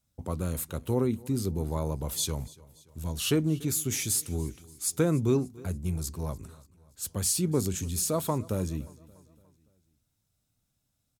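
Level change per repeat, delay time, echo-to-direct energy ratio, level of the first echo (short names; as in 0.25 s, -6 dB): -6.0 dB, 0.289 s, -20.5 dB, -22.0 dB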